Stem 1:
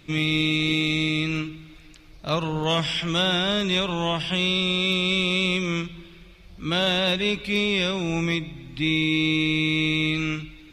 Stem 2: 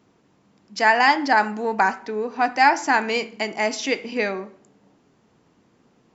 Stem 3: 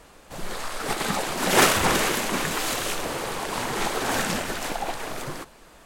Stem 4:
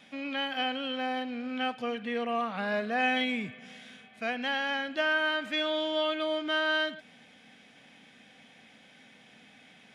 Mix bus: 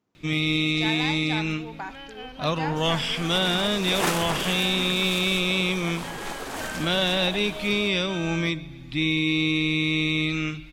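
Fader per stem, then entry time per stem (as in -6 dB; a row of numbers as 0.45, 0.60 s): -1.0, -17.0, -8.0, -10.5 dB; 0.15, 0.00, 2.45, 1.60 s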